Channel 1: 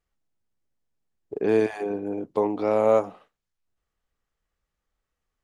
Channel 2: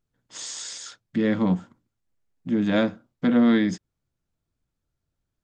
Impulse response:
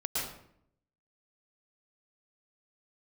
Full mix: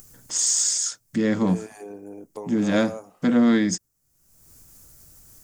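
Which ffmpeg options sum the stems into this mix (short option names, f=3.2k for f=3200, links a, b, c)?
-filter_complex "[0:a]acompressor=threshold=-21dB:ratio=6,volume=-10dB[a];[1:a]volume=0.5dB[b];[a][b]amix=inputs=2:normalize=0,acompressor=mode=upward:threshold=-36dB:ratio=2.5,aexciter=amount=4.3:drive=8.4:freq=5.2k"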